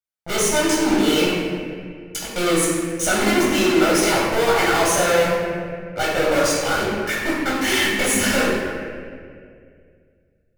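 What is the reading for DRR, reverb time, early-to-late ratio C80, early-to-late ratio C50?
-6.5 dB, 2.2 s, 1.0 dB, -1.0 dB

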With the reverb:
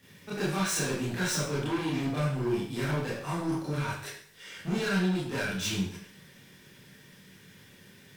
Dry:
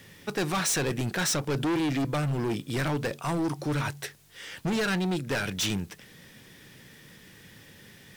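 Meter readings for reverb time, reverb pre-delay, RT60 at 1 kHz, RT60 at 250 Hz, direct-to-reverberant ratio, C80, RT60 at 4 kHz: 0.60 s, 25 ms, 0.60 s, 0.60 s, -9.5 dB, 5.5 dB, 0.55 s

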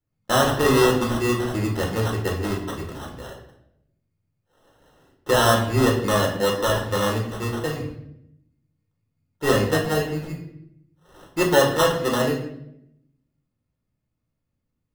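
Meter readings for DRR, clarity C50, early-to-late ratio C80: -2.0 dB, 6.5 dB, 9.5 dB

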